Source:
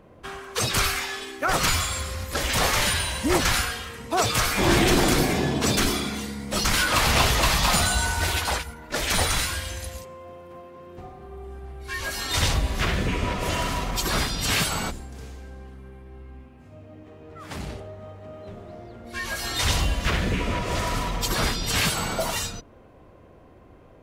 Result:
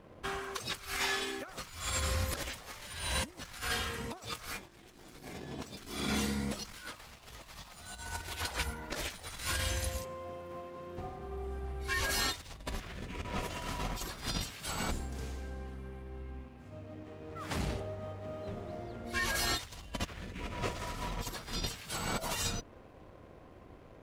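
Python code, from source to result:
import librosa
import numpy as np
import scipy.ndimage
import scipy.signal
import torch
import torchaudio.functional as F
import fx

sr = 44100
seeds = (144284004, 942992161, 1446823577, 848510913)

y = fx.over_compress(x, sr, threshold_db=-30.0, ratio=-0.5)
y = np.sign(y) * np.maximum(np.abs(y) - 10.0 ** (-53.0 / 20.0), 0.0)
y = y * librosa.db_to_amplitude(-6.5)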